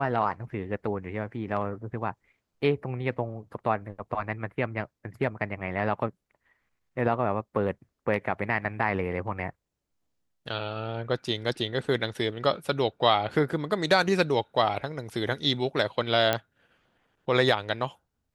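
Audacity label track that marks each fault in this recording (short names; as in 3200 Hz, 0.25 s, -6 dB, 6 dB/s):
16.330000	16.330000	pop -10 dBFS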